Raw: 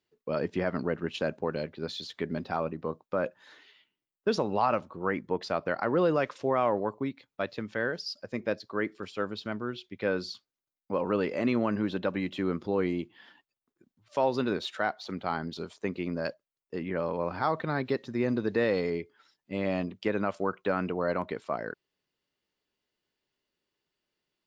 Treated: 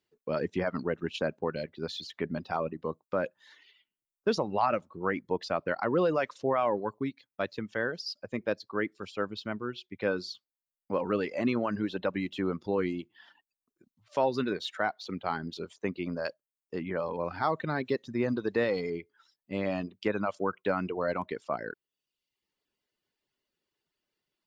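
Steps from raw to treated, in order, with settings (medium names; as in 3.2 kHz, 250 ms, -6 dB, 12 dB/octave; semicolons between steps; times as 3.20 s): reverb removal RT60 0.77 s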